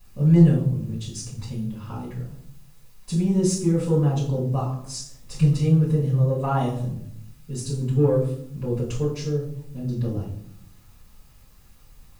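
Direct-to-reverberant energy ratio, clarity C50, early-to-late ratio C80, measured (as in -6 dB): -8.0 dB, 6.0 dB, 10.5 dB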